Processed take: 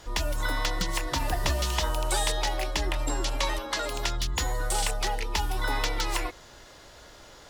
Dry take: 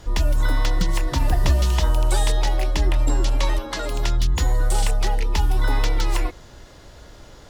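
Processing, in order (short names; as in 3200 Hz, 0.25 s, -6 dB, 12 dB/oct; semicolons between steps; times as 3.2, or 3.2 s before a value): low shelf 350 Hz -11.5 dB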